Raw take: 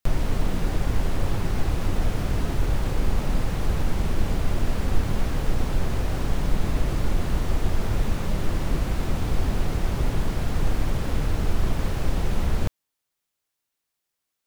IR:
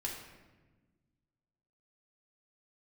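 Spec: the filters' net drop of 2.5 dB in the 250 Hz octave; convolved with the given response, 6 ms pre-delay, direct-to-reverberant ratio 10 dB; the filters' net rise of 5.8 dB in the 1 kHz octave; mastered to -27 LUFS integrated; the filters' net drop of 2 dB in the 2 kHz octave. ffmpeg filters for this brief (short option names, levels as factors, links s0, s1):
-filter_complex "[0:a]equalizer=f=250:t=o:g=-4,equalizer=f=1000:t=o:g=9,equalizer=f=2000:t=o:g=-6,asplit=2[s0][s1];[1:a]atrim=start_sample=2205,adelay=6[s2];[s1][s2]afir=irnorm=-1:irlink=0,volume=0.282[s3];[s0][s3]amix=inputs=2:normalize=0,volume=1.06"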